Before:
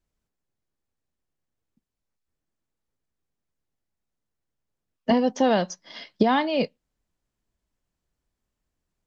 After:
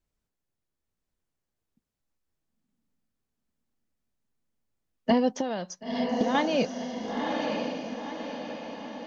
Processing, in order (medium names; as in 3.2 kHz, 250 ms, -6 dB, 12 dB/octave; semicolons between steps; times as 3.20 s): 5.28–6.35 s: compression 12:1, threshold -24 dBFS, peak gain reduction 11 dB; echo that smears into a reverb 987 ms, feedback 52%, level -3 dB; trim -2 dB